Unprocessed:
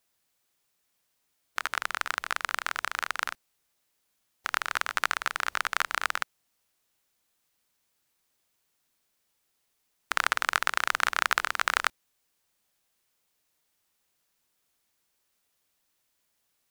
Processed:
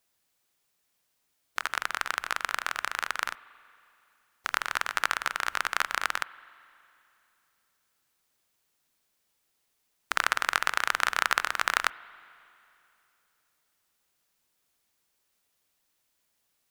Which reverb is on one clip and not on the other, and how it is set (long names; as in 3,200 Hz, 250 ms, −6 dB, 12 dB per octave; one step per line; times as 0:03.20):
spring reverb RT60 2.8 s, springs 39/45 ms, chirp 65 ms, DRR 18.5 dB